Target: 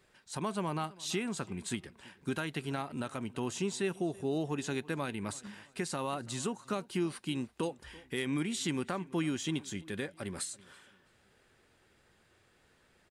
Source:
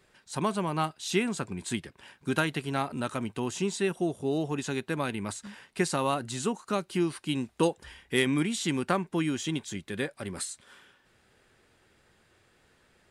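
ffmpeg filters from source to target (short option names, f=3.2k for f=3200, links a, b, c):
-filter_complex "[0:a]alimiter=limit=-20.5dB:level=0:latency=1:release=187,asplit=2[a][b];[b]adelay=332,lowpass=f=3.6k:p=1,volume=-21.5dB,asplit=2[c][d];[d]adelay=332,lowpass=f=3.6k:p=1,volume=0.37,asplit=2[e][f];[f]adelay=332,lowpass=f=3.6k:p=1,volume=0.37[g];[a][c][e][g]amix=inputs=4:normalize=0,volume=-3dB"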